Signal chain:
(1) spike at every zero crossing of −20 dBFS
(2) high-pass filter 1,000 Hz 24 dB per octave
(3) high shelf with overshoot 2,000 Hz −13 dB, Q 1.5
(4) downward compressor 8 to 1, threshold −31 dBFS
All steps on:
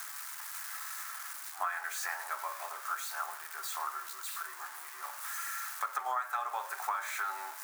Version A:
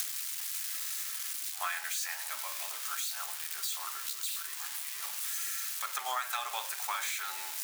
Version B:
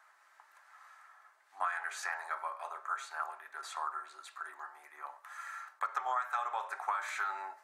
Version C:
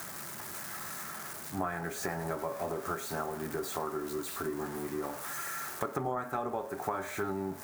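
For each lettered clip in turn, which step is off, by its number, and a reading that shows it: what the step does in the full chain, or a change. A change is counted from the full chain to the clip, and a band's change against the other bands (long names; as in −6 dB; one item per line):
3, 4 kHz band +11.0 dB
1, distortion level −5 dB
2, 500 Hz band +17.5 dB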